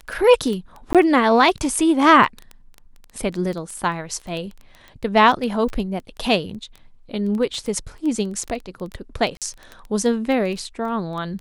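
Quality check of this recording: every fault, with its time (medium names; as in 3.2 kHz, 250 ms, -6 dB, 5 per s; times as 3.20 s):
crackle 10 per s -25 dBFS
0.93–0.95 s: dropout 17 ms
9.37–9.42 s: dropout 47 ms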